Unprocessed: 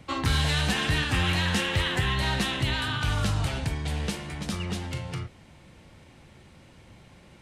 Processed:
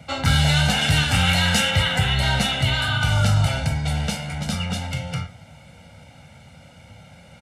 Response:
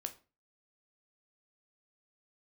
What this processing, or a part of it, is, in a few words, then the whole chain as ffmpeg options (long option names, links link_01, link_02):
microphone above a desk: -filter_complex "[0:a]aecho=1:1:1.4:0.88[link_01];[1:a]atrim=start_sample=2205[link_02];[link_01][link_02]afir=irnorm=-1:irlink=0,highpass=82,asettb=1/sr,asplit=3[link_03][link_04][link_05];[link_03]atrim=end=0.814[link_06];[link_04]atrim=start=0.81:end=1.71,asetpts=PTS-STARTPTS,afade=type=in:duration=0.004:curve=qsin,afade=type=out:start_time=0.896:duration=0.004:curve=qsin,highshelf=frequency=4700:gain=5.5[link_07];[link_05]atrim=start=1.706[link_08];[link_06][link_07]acrossfade=duration=0.004:curve1=hsin:curve2=qsin[link_09];[link_09][link_08]acrossfade=duration=0.004:curve1=qsin:curve2=hsin,volume=6dB"